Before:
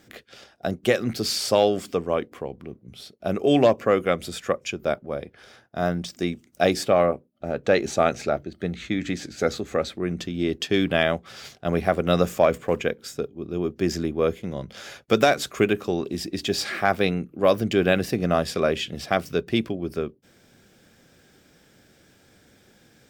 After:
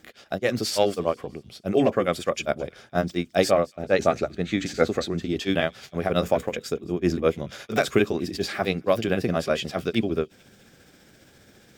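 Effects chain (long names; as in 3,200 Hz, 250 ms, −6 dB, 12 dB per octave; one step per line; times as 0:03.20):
speech leveller within 4 dB 2 s
time stretch by overlap-add 0.51×, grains 136 ms
delay with a high-pass on its return 216 ms, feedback 50%, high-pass 2,500 Hz, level −22.5 dB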